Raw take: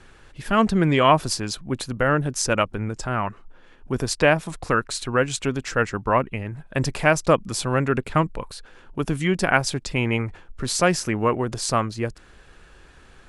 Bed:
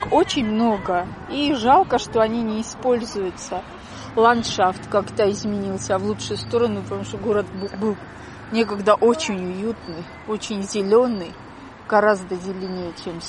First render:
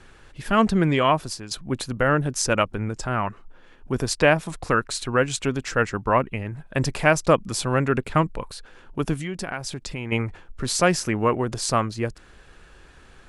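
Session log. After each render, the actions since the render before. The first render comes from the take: 0.74–1.51 fade out, to -11 dB; 9.14–10.12 compressor 3:1, threshold -29 dBFS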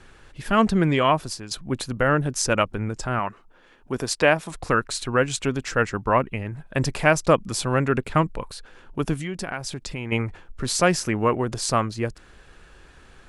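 3.19–4.55 low shelf 130 Hz -11.5 dB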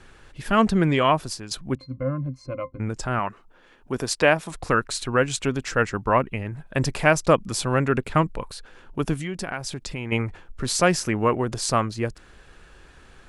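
1.75–2.8 octave resonator C, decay 0.1 s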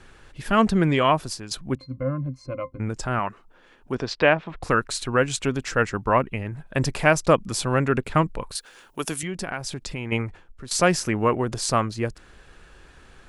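3.94–4.61 LPF 5700 Hz -> 2700 Hz 24 dB/oct; 8.55–9.23 RIAA curve recording; 10.08–10.71 fade out, to -15 dB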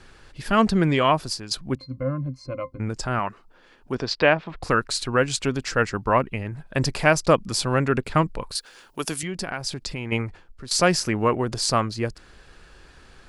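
bell 4700 Hz +6.5 dB 0.4 oct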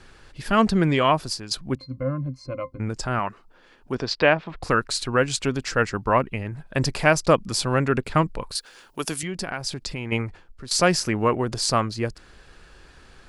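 nothing audible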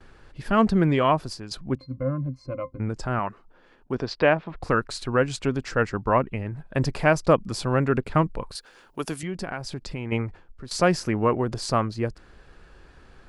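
gate with hold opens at -46 dBFS; high shelf 2300 Hz -10 dB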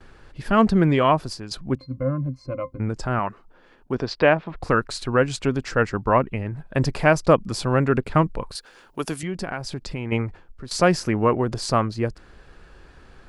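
gain +2.5 dB

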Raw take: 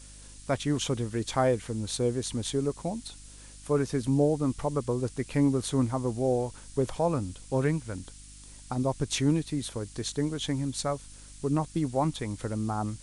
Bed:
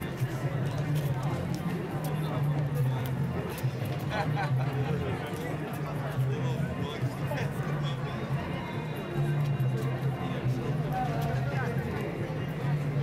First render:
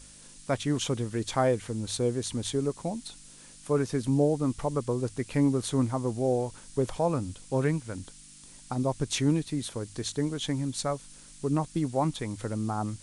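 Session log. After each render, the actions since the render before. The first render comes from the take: de-hum 50 Hz, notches 2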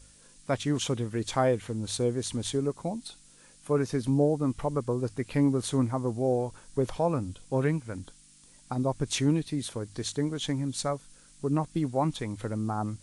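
noise print and reduce 6 dB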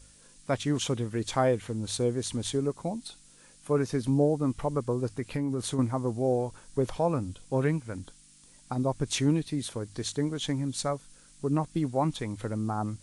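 5.15–5.79 compressor, threshold -25 dBFS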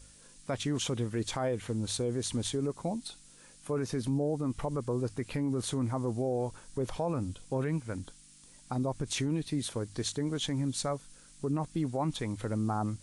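limiter -23 dBFS, peak gain reduction 10 dB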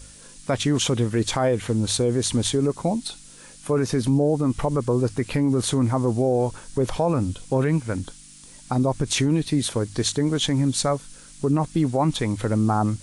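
gain +10.5 dB

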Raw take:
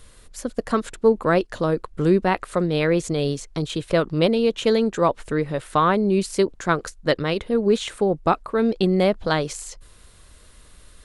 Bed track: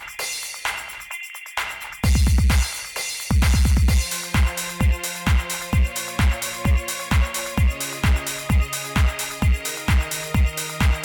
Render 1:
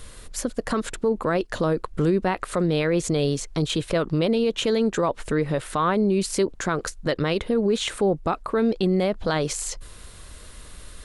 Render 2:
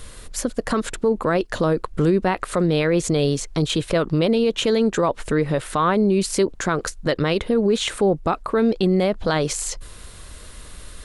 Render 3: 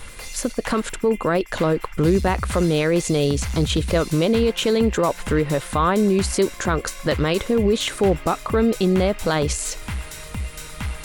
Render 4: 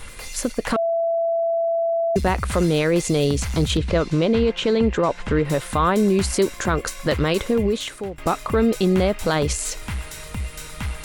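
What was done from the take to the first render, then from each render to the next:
in parallel at +1 dB: compressor, threshold -29 dBFS, peak gain reduction 16.5 dB; on the sum: limiter -13.5 dBFS, peak gain reduction 9 dB
gain +3 dB
add bed track -10 dB
0.76–2.16 bleep 668 Hz -18 dBFS; 3.77–5.45 air absorption 110 m; 7.49–8.18 fade out, to -20.5 dB

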